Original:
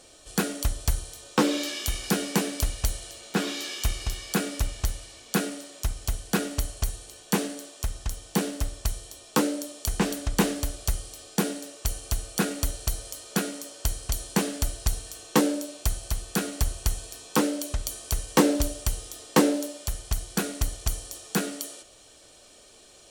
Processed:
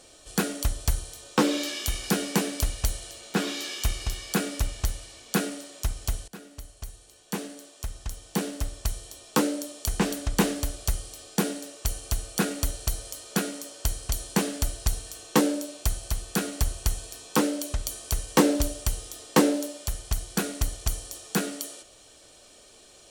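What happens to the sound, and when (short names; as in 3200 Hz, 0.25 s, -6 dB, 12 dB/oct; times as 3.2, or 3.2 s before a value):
6.28–9.12 fade in, from -20 dB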